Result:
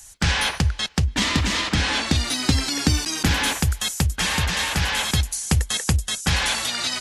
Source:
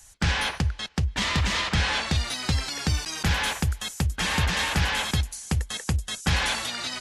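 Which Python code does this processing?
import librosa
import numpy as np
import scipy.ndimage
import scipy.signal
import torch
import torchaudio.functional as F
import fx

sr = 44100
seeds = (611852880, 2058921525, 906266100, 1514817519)

y = fx.high_shelf(x, sr, hz=4200.0, db=6.0)
y = fx.rider(y, sr, range_db=10, speed_s=0.5)
y = fx.peak_eq(y, sr, hz=280.0, db=12.0, octaves=0.64, at=(1.08, 3.59))
y = y * 10.0 ** (2.5 / 20.0)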